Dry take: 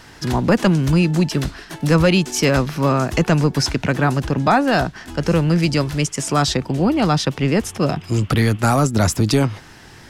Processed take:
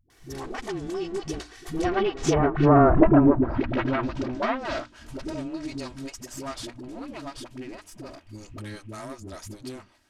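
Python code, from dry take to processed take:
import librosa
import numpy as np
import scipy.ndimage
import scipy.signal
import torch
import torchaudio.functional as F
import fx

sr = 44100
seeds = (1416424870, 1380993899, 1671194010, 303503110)

y = fx.lower_of_two(x, sr, delay_ms=2.9)
y = fx.doppler_pass(y, sr, speed_mps=29, closest_m=7.3, pass_at_s=2.86)
y = fx.hum_notches(y, sr, base_hz=60, count=5)
y = fx.env_lowpass_down(y, sr, base_hz=1400.0, full_db=-21.5)
y = fx.high_shelf(y, sr, hz=8600.0, db=9.0)
y = fx.env_lowpass_down(y, sr, base_hz=1300.0, full_db=-23.0)
y = fx.dispersion(y, sr, late='highs', ms=101.0, hz=310.0)
y = F.gain(torch.from_numpy(y), 6.0).numpy()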